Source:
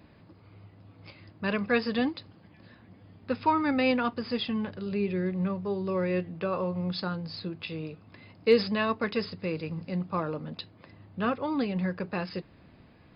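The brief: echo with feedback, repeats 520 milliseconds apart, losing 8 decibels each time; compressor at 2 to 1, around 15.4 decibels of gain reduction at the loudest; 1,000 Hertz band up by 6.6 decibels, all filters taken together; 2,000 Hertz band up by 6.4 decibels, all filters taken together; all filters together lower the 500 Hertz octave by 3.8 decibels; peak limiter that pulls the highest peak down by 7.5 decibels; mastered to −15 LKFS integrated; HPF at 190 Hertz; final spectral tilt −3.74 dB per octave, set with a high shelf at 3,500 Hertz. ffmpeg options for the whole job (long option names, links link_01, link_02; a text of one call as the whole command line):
ffmpeg -i in.wav -af "highpass=190,equalizer=frequency=500:width_type=o:gain=-6,equalizer=frequency=1000:width_type=o:gain=7.5,equalizer=frequency=2000:width_type=o:gain=7.5,highshelf=frequency=3500:gain=-5,acompressor=threshold=-43dB:ratio=2,alimiter=level_in=6dB:limit=-24dB:level=0:latency=1,volume=-6dB,aecho=1:1:520|1040|1560|2080|2600:0.398|0.159|0.0637|0.0255|0.0102,volume=26.5dB" out.wav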